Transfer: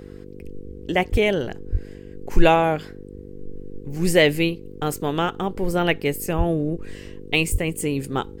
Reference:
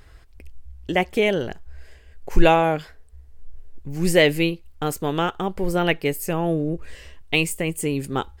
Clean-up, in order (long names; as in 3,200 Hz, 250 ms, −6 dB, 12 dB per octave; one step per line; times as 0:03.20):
hum removal 49.2 Hz, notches 10
high-pass at the plosives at 0:01.11/0:01.71/0:06.37/0:07.51